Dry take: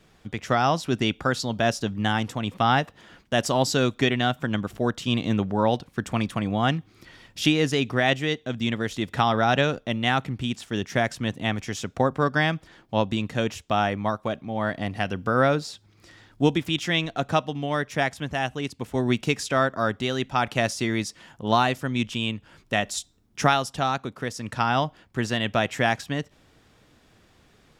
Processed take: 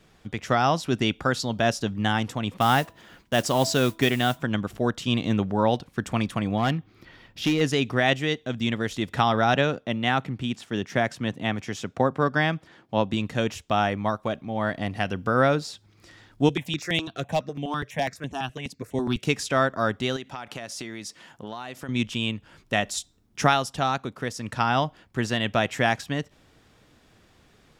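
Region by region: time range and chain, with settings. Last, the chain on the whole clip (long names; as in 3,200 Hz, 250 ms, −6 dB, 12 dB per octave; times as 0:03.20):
0:02.60–0:04.42: noise that follows the level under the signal 20 dB + hum removal 328.7 Hz, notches 3
0:06.57–0:07.61: parametric band 8,500 Hz −12 dB 1.3 octaves + gain into a clipping stage and back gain 17.5 dB
0:09.54–0:13.14: high-pass filter 100 Hz + high-shelf EQ 4,300 Hz −6 dB
0:16.49–0:19.25: high-pass filter 98 Hz + hard clipping −12.5 dBFS + step-sequenced phaser 12 Hz 230–4,800 Hz
0:20.16–0:21.89: high-pass filter 190 Hz 6 dB per octave + downward compressor 12 to 1, threshold −31 dBFS
whole clip: no processing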